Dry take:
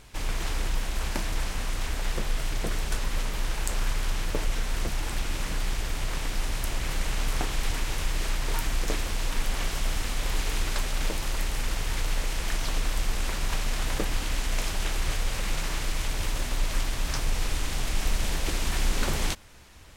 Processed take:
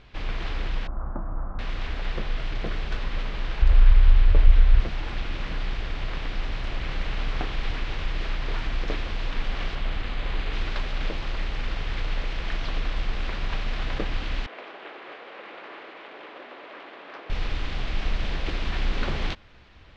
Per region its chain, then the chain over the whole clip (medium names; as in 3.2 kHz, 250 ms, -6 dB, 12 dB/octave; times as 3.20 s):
0.87–1.59 s: elliptic low-pass 1.3 kHz, stop band 60 dB + peaking EQ 430 Hz -11 dB 0.29 oct
3.62–4.80 s: low-pass 5 kHz + resonant low shelf 110 Hz +12.5 dB, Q 1.5
9.75–10.53 s: low-pass 7.7 kHz + careless resampling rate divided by 4×, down filtered, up hold
14.46–17.30 s: high-pass 340 Hz 24 dB/octave + tape spacing loss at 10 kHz 27 dB + decimation joined by straight lines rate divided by 4×
whole clip: low-pass 4 kHz 24 dB/octave; band-stop 910 Hz, Q 18